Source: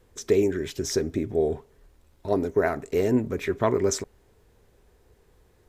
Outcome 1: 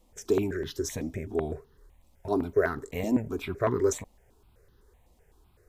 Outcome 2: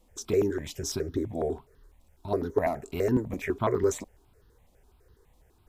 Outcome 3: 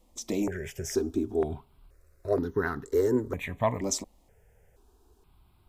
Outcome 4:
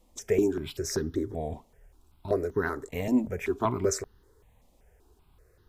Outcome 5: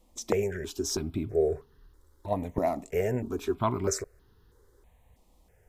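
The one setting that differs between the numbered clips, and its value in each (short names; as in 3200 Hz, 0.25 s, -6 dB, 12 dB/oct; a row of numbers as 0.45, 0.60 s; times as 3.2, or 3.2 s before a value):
step phaser, rate: 7.9, 12, 2.1, 5.2, 3.1 Hz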